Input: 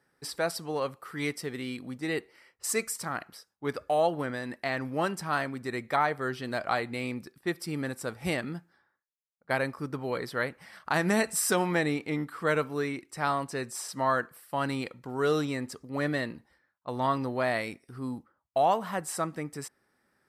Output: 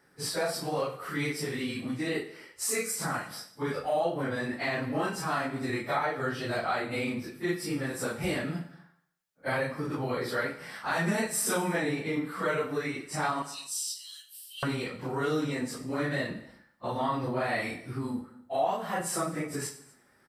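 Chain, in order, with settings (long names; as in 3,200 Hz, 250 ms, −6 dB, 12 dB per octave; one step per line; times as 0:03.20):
random phases in long frames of 100 ms
0:13.42–0:14.63: Chebyshev high-pass filter 2,900 Hz, order 5
downward compressor 2.5 to 1, threshold −39 dBFS, peak gain reduction 14 dB
single-tap delay 244 ms −24 dB
on a send at −9.5 dB: convolution reverb RT60 0.55 s, pre-delay 36 ms
on the sum: level +7.5 dB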